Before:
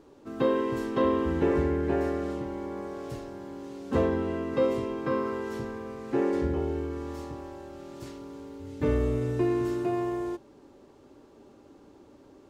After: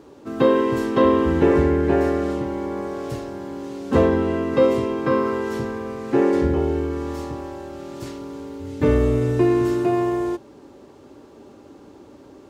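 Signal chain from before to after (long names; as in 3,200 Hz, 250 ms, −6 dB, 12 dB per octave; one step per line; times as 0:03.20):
high-pass filter 49 Hz
level +8.5 dB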